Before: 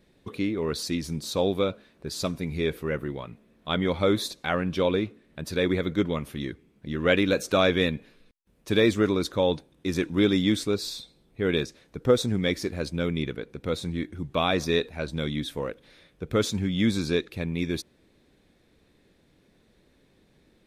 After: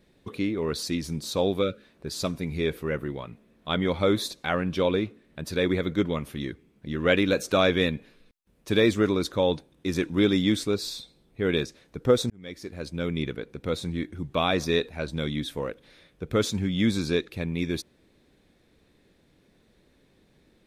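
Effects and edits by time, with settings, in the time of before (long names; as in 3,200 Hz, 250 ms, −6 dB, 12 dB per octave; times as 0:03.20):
0:01.62–0:01.83: gain on a spectral selection 600–1,200 Hz −18 dB
0:12.30–0:13.23: fade in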